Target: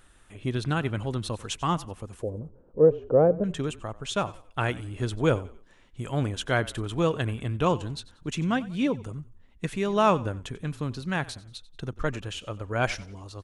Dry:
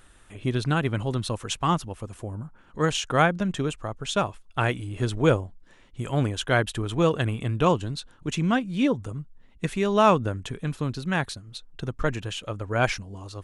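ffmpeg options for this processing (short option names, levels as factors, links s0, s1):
-filter_complex "[0:a]asettb=1/sr,asplit=3[s0][s1][s2];[s0]atrim=end=2.224[s3];[s1]atrim=start=2.22:end=3.44,asetpts=PTS-STARTPTS,afade=t=in:d=0.004:c=qsin,afade=t=out:st=1.216:d=0.004:c=qsin,lowpass=f=500:t=q:w=4.9[s4];[s2]atrim=start=3.436[s5];[s3][s4]acrossfade=d=0.004:c1=hsin:c2=qsin[s6];[s6][s5]acrossfade=d=0.004:c1=qsin:c2=hsin,asplit=4[s7][s8][s9][s10];[s8]adelay=92,afreqshift=-33,volume=0.106[s11];[s9]adelay=184,afreqshift=-66,volume=0.0394[s12];[s10]adelay=276,afreqshift=-99,volume=0.0145[s13];[s7][s11][s12][s13]amix=inputs=4:normalize=0,volume=0.708"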